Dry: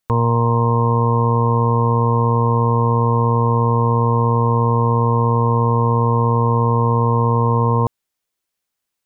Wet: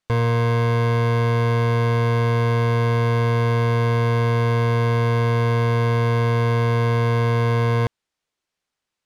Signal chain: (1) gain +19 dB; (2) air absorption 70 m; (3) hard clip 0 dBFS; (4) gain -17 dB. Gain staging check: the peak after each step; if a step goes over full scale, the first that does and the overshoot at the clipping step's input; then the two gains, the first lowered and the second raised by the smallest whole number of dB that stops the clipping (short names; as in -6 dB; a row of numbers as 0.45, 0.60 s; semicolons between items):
+10.0, +10.0, 0.0, -17.0 dBFS; step 1, 10.0 dB; step 1 +9 dB, step 4 -7 dB